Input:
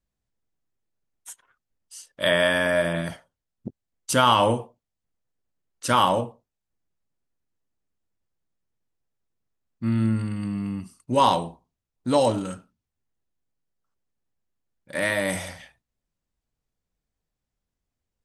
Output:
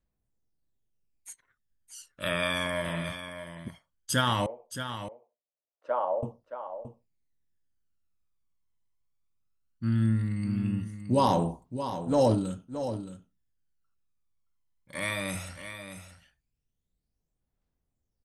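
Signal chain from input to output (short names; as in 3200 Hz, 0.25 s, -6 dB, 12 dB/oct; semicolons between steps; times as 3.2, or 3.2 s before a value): phaser 0.17 Hz, delay 1 ms, feedback 66%; 4.46–6.23 ladder band-pass 680 Hz, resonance 60%; 11.27–12.35 transient shaper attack -11 dB, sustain +6 dB; echo 0.622 s -10 dB; gain -7 dB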